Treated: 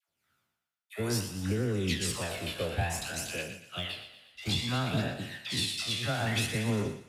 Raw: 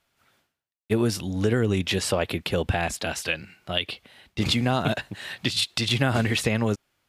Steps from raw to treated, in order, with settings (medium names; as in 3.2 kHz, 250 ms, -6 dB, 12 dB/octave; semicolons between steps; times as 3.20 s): spectral sustain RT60 0.68 s; phaser 0.59 Hz, delay 1.8 ms, feedback 48%; treble shelf 7.7 kHz +6 dB; peak limiter -13 dBFS, peak gain reduction 7.5 dB; high-pass 82 Hz; bass shelf 170 Hz +3.5 dB; phase dispersion lows, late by 88 ms, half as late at 800 Hz; on a send: thinning echo 119 ms, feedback 60%, high-pass 620 Hz, level -8 dB; on the sum: upward expansion 1.5:1, over -36 dBFS; trim -7.5 dB